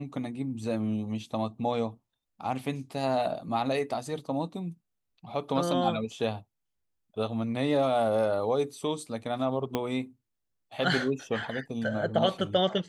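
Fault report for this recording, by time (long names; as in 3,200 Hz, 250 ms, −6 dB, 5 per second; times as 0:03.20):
0:09.75: click −14 dBFS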